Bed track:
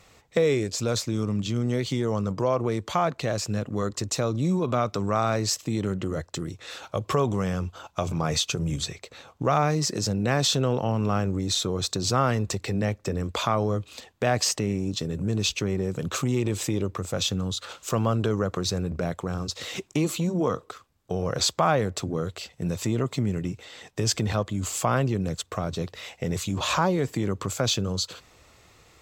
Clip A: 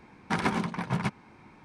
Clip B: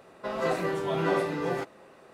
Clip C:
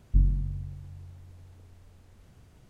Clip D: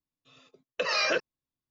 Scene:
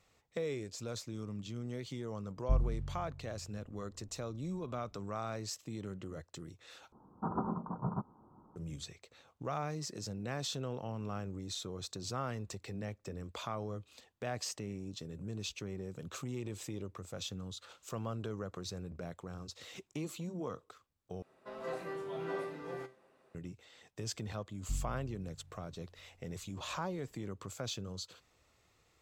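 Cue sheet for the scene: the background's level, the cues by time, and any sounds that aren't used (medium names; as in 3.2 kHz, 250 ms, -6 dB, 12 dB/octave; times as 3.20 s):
bed track -15.5 dB
2.35 s: add C -7.5 dB + level-controlled noise filter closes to 560 Hz, open at -19 dBFS
6.92 s: replace with A -7 dB + steep low-pass 1.3 kHz 72 dB/octave
21.22 s: replace with B -9 dB + feedback comb 130 Hz, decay 0.3 s
24.55 s: add C -15 dB
not used: D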